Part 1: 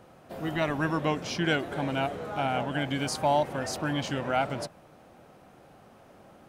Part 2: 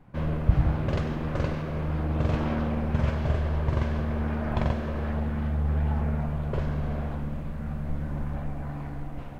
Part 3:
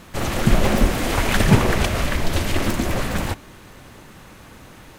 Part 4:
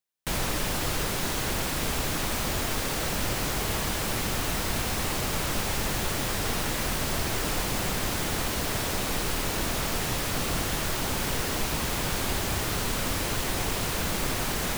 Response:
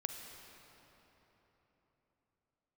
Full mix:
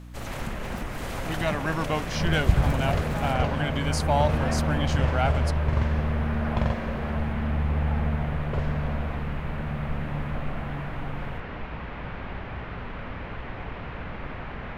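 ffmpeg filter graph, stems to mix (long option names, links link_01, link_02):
-filter_complex "[0:a]adelay=850,volume=1dB[link_01];[1:a]adelay=2000,volume=-3dB,asplit=2[link_02][link_03];[link_03]volume=-4dB[link_04];[2:a]acompressor=threshold=-19dB:ratio=4,volume=-11.5dB[link_05];[3:a]lowpass=frequency=2400:width=0.5412,lowpass=frequency=2400:width=1.3066,volume=-5.5dB[link_06];[4:a]atrim=start_sample=2205[link_07];[link_04][link_07]afir=irnorm=-1:irlink=0[link_08];[link_01][link_02][link_05][link_06][link_08]amix=inputs=5:normalize=0,equalizer=frequency=330:width=2.5:gain=-5,aeval=exprs='val(0)+0.00891*(sin(2*PI*60*n/s)+sin(2*PI*2*60*n/s)/2+sin(2*PI*3*60*n/s)/3+sin(2*PI*4*60*n/s)/4+sin(2*PI*5*60*n/s)/5)':channel_layout=same"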